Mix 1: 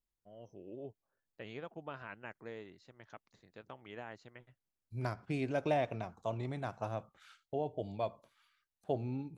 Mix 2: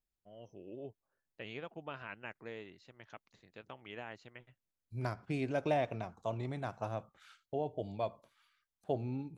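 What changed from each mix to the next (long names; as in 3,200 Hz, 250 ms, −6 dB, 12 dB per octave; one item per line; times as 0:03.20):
first voice: add parametric band 2,700 Hz +6 dB 0.76 octaves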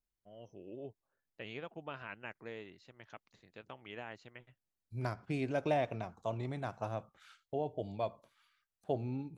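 nothing changed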